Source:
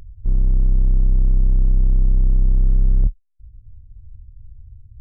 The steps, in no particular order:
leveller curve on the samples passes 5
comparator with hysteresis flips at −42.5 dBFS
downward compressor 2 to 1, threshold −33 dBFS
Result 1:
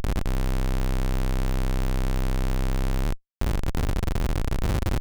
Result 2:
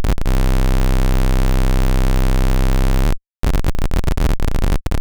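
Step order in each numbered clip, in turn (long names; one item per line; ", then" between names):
downward compressor, then leveller curve on the samples, then comparator with hysteresis
comparator with hysteresis, then downward compressor, then leveller curve on the samples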